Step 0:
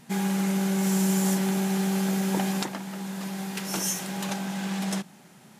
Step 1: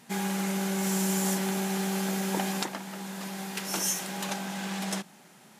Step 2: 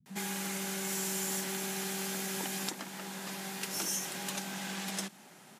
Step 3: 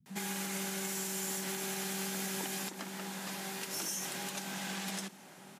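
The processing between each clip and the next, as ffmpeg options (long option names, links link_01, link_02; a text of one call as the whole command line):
ffmpeg -i in.wav -af "highpass=frequency=300:poles=1" out.wav
ffmpeg -i in.wav -filter_complex "[0:a]acrossover=split=160[link_01][link_02];[link_02]adelay=60[link_03];[link_01][link_03]amix=inputs=2:normalize=0,acrossover=split=340|1300|5100[link_04][link_05][link_06][link_07];[link_04]acompressor=threshold=-40dB:ratio=4[link_08];[link_05]acompressor=threshold=-48dB:ratio=4[link_09];[link_06]acompressor=threshold=-41dB:ratio=4[link_10];[link_07]acompressor=threshold=-35dB:ratio=4[link_11];[link_08][link_09][link_10][link_11]amix=inputs=4:normalize=0" out.wav
ffmpeg -i in.wav -filter_complex "[0:a]alimiter=level_in=3dB:limit=-24dB:level=0:latency=1:release=106,volume=-3dB,asplit=2[link_01][link_02];[link_02]adelay=1224,volume=-14dB,highshelf=frequency=4000:gain=-27.6[link_03];[link_01][link_03]amix=inputs=2:normalize=0" out.wav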